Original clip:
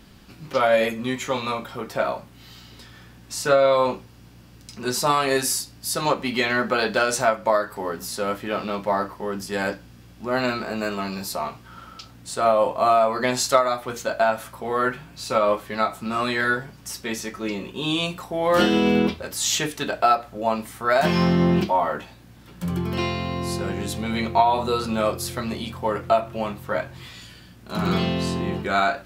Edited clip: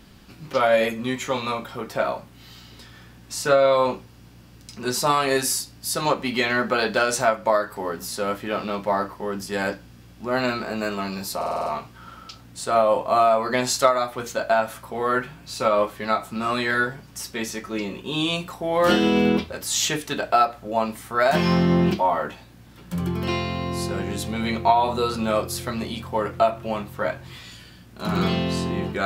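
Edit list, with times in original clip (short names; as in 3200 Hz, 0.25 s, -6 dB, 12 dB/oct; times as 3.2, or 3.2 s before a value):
11.36 stutter 0.05 s, 7 plays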